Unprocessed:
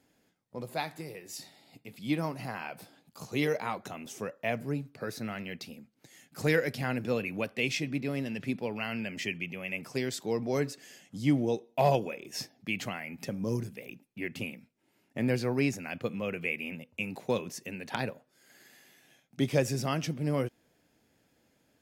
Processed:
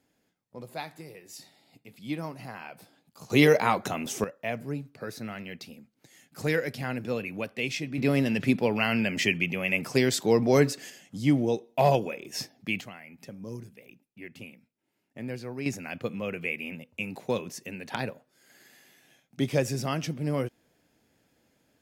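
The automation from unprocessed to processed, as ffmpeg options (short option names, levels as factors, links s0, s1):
-af "asetnsamples=n=441:p=0,asendcmd='3.3 volume volume 10dB;4.24 volume volume -0.5dB;7.98 volume volume 9dB;10.9 volume volume 3dB;12.81 volume volume -7.5dB;15.66 volume volume 1dB',volume=0.708"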